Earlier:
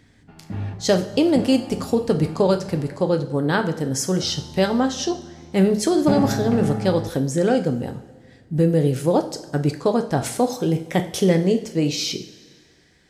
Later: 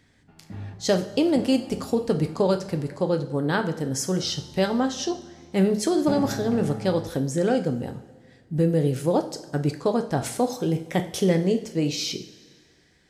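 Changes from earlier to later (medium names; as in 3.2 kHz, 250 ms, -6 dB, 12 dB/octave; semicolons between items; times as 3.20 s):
speech -3.5 dB; background -8.0 dB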